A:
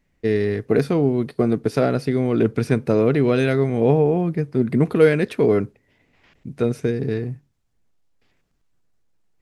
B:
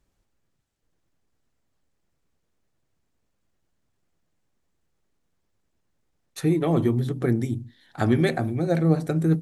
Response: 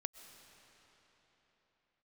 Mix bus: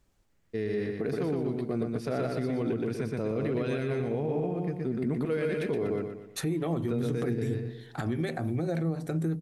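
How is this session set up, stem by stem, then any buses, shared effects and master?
-10.0 dB, 0.30 s, no send, echo send -3.5 dB, dry
+2.5 dB, 0.00 s, no send, no echo send, compressor 6:1, threshold -28 dBFS, peak gain reduction 13.5 dB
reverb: off
echo: feedback echo 0.121 s, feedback 41%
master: limiter -21.5 dBFS, peak gain reduction 10 dB

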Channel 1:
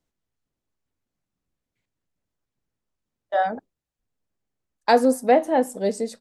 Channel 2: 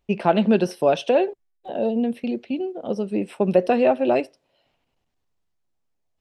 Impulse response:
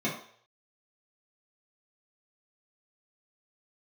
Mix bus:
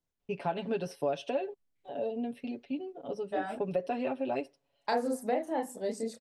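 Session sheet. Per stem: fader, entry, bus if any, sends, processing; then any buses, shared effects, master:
-5.0 dB, 0.00 s, no send, chorus voices 2, 0.49 Hz, delay 30 ms, depth 3.2 ms
-12.5 dB, 0.20 s, no send, comb 7.1 ms, depth 87%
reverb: off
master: compressor 2.5:1, threshold -29 dBFS, peak gain reduction 8 dB

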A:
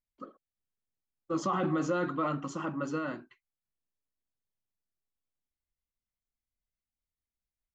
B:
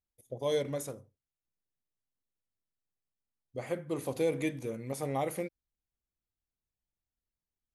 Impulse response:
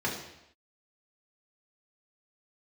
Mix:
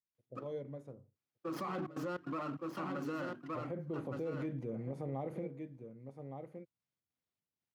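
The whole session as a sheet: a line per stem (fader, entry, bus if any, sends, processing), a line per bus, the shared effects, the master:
-1.5 dB, 0.15 s, no send, echo send -7.5 dB, notches 50/100/150/200/250/300 Hz; step gate "x.xx.xxx..xxxxxx" 149 bpm -24 dB; running maximum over 5 samples
0.81 s -14 dB -> 1.28 s -4.5 dB, 0.00 s, no send, echo send -12 dB, LPF 1400 Hz 6 dB/oct; tilt -2.5 dB/oct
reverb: off
echo: echo 1.165 s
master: HPF 110 Hz 24 dB/oct; limiter -31.5 dBFS, peak gain reduction 10 dB

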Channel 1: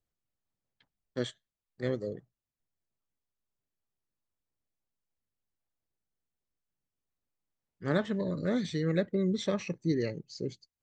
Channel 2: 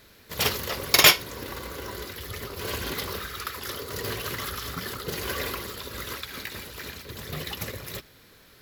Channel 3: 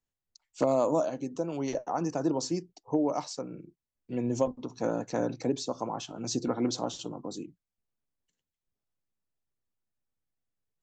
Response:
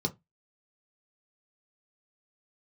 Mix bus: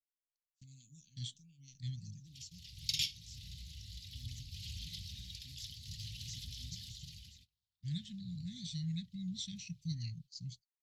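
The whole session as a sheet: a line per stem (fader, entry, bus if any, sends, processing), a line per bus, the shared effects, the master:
-1.0 dB, 0.00 s, no send, dry
-1.5 dB, 1.95 s, no send, LPF 5500 Hz 12 dB/oct; compressor 1.5:1, threshold -47 dBFS, peak gain reduction 12.5 dB; auto duck -22 dB, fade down 0.90 s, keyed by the first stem
-14.0 dB, 0.00 s, no send, dry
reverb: off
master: gate -47 dBFS, range -27 dB; inverse Chebyshev band-stop 380–1300 Hz, stop band 60 dB

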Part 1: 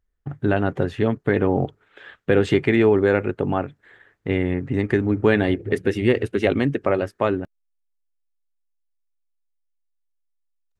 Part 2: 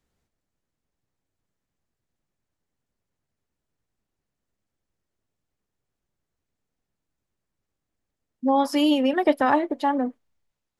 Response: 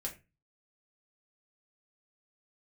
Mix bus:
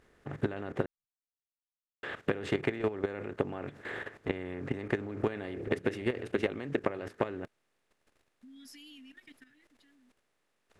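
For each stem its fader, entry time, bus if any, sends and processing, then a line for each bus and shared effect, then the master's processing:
-0.5 dB, 0.00 s, muted 0.86–2.03, no send, per-bin compression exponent 0.6; compressor 10:1, threshold -22 dBFS, peak gain reduction 13 dB
-8.5 dB, 0.00 s, no send, inverse Chebyshev band-stop 380–1100 Hz, stop band 40 dB; limiter -29 dBFS, peak gain reduction 11 dB; auto duck -21 dB, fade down 1.85 s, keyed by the first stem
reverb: off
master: low shelf 240 Hz -3 dB; level quantiser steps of 13 dB

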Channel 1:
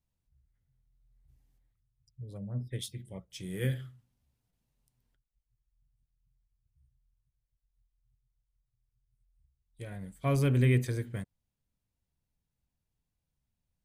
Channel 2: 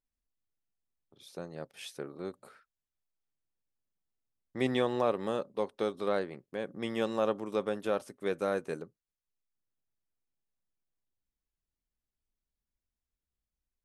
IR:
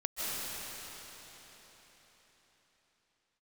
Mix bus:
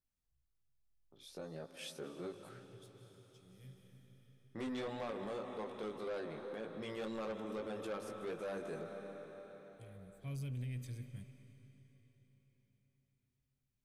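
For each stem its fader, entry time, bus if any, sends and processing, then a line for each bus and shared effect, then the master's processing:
-13.0 dB, 0.00 s, send -18.5 dB, band shelf 760 Hz -11 dB 2.9 oct; auto duck -16 dB, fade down 1.95 s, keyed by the second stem
-0.5 dB, 0.00 s, send -16.5 dB, chorus 1.8 Hz, delay 17.5 ms, depth 2.1 ms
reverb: on, RT60 4.5 s, pre-delay 0.115 s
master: soft clip -32 dBFS, distortion -9 dB; limiter -36.5 dBFS, peak gain reduction 4.5 dB

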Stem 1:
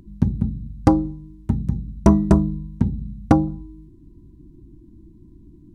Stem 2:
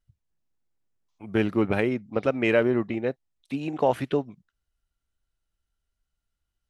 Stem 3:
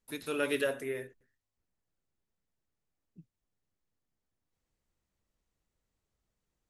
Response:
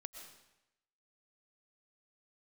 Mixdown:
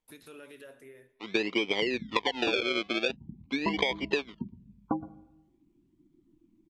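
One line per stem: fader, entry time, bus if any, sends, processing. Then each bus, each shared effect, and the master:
-12.5 dB, 1.60 s, bus A, send -11 dB, echo send -19.5 dB, spectral gate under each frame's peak -25 dB strong; reverb removal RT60 0.52 s
-6.5 dB, 0.00 s, bus A, no send, no echo send, EQ curve 150 Hz 0 dB, 480 Hz +14 dB, 3500 Hz -11 dB; decimation with a swept rate 32×, swing 100% 0.45 Hz; bell 3300 Hz +10 dB 0.62 oct
-6.0 dB, 0.00 s, no bus, send -11.5 dB, no echo send, compressor 4:1, threshold -41 dBFS, peak gain reduction 12.5 dB; limiter -34 dBFS, peak gain reduction 4.5 dB; auto duck -8 dB, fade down 0.50 s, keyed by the second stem
bus A: 0.0 dB, speaker cabinet 220–5000 Hz, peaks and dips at 600 Hz -7 dB, 1000 Hz +10 dB, 1500 Hz -8 dB, 2300 Hz +9 dB; compressor, threshold -18 dBFS, peak gain reduction 9.5 dB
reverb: on, RT60 0.90 s, pre-delay 80 ms
echo: echo 0.118 s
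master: compressor 3:1, threshold -25 dBFS, peak gain reduction 7 dB

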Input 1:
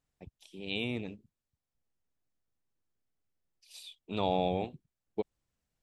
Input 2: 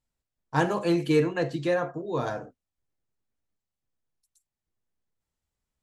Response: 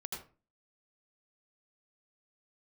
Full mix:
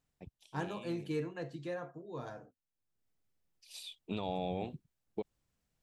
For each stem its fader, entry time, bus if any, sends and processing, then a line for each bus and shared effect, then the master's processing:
+1.5 dB, 0.00 s, no send, limiter -28.5 dBFS, peak gain reduction 11 dB; auto duck -23 dB, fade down 1.45 s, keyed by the second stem
-15.0 dB, 0.00 s, no send, dry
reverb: off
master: bell 160 Hz +2.5 dB 1.5 oct

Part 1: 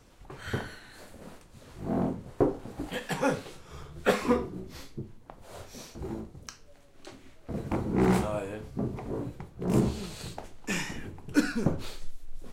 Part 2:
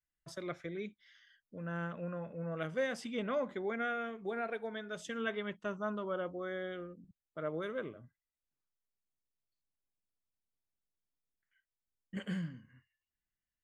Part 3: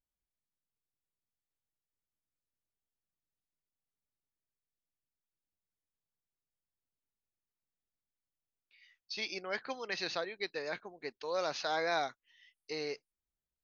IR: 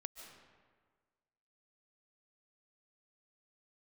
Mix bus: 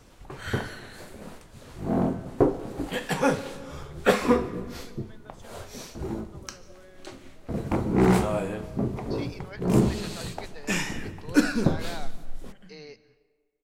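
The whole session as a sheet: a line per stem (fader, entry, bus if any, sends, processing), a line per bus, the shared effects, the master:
+1.5 dB, 0.00 s, send -3.5 dB, dry
-6.0 dB, 0.35 s, no send, compressor, threshold -44 dBFS, peak gain reduction 14 dB
-9.0 dB, 0.00 s, send -4.5 dB, dry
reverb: on, RT60 1.6 s, pre-delay 0.105 s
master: dry

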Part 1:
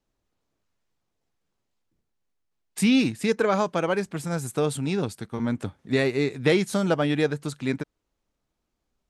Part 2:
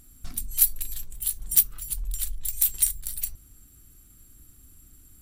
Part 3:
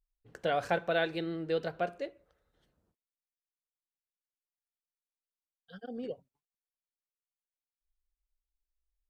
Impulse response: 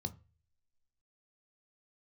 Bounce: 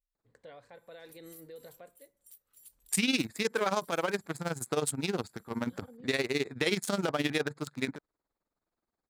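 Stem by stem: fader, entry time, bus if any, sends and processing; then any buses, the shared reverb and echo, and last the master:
+2.0 dB, 0.15 s, no bus, no send, Wiener smoothing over 15 samples; tilt +3 dB/oct; tremolo 19 Hz, depth 80%
-13.5 dB, 0.75 s, bus A, no send, HPF 740 Hz 6 dB/oct; compressor 3:1, threshold -36 dBFS, peak gain reduction 17.5 dB
-9.5 dB, 0.00 s, bus A, no send, ripple EQ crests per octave 1, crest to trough 8 dB
bus A: 0.0 dB, tremolo 0.72 Hz, depth 76%; limiter -40 dBFS, peak gain reduction 11 dB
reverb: off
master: limiter -16 dBFS, peak gain reduction 10 dB

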